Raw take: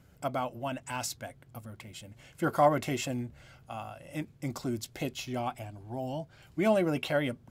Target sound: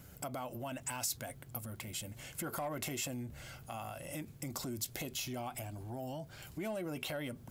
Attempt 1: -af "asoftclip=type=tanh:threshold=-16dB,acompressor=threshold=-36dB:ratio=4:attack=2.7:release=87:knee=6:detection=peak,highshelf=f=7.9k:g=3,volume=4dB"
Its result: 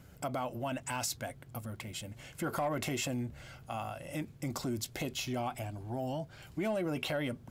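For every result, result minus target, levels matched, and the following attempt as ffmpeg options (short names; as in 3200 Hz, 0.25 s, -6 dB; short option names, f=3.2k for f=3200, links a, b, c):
compressor: peak gain reduction -6 dB; 8000 Hz band -4.5 dB
-af "asoftclip=type=tanh:threshold=-16dB,acompressor=threshold=-44dB:ratio=4:attack=2.7:release=87:knee=6:detection=peak,highshelf=f=7.9k:g=3,volume=4dB"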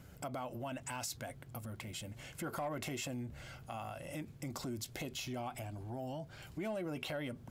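8000 Hz band -4.0 dB
-af "asoftclip=type=tanh:threshold=-16dB,acompressor=threshold=-44dB:ratio=4:attack=2.7:release=87:knee=6:detection=peak,highshelf=f=7.9k:g=15,volume=4dB"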